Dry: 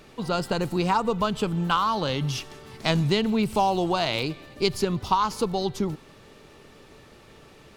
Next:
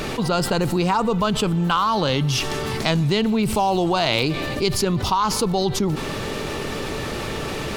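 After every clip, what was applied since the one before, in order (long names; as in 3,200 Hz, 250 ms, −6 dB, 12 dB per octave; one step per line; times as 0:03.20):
envelope flattener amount 70%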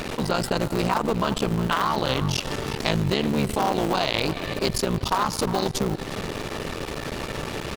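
sub-harmonics by changed cycles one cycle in 3, muted
slap from a distant wall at 61 metres, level −11 dB
transient designer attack 0 dB, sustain −12 dB
level −1.5 dB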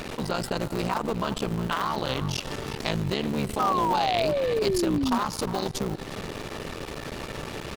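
sound drawn into the spectrogram fall, 0:03.59–0:05.19, 230–1,300 Hz −21 dBFS
level −4.5 dB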